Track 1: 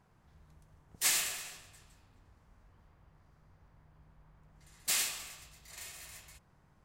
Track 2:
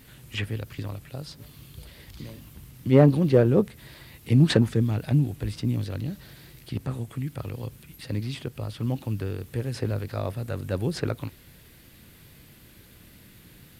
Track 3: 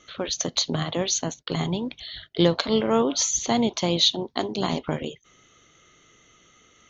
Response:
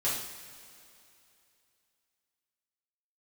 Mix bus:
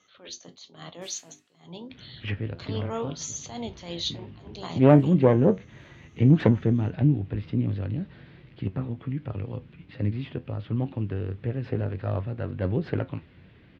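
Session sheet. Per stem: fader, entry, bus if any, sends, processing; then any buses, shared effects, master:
−6.5 dB, 0.00 s, no send, high-shelf EQ 6,300 Hz −11 dB; comb filter 5.4 ms, depth 69%; automatic ducking −22 dB, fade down 1.95 s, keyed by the third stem
+2.0 dB, 1.90 s, no send, phase distortion by the signal itself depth 0.28 ms; low-pass filter 3,100 Hz 24 dB per octave; low-shelf EQ 320 Hz +8.5 dB
−5.0 dB, 0.00 s, no send, mains-hum notches 50/100/150/200/250/300/350/400 Hz; level that may rise only so fast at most 130 dB per second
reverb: not used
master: high-pass filter 150 Hz 6 dB per octave; flanger 1.4 Hz, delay 9.5 ms, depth 2.9 ms, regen +67%

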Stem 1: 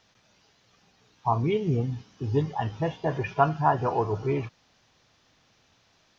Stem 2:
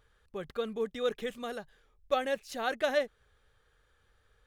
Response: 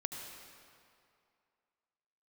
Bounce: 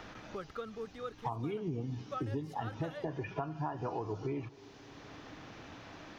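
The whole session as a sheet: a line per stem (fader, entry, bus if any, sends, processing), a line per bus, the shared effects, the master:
−2.5 dB, 0.00 s, send −16.5 dB, parametric band 300 Hz +9.5 dB 0.3 octaves; downward compressor 6 to 1, threshold −33 dBFS, peak gain reduction 17 dB
−7.0 dB, 0.00 s, no send, parametric band 1,300 Hz +14.5 dB 0.2 octaves; automatic ducking −12 dB, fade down 1.20 s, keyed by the first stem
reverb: on, RT60 2.4 s, pre-delay 69 ms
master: multiband upward and downward compressor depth 70%

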